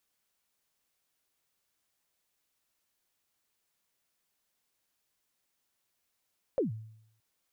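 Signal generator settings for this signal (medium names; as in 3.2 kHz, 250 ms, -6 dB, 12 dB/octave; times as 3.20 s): kick drum length 0.62 s, from 590 Hz, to 110 Hz, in 132 ms, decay 0.73 s, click off, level -23 dB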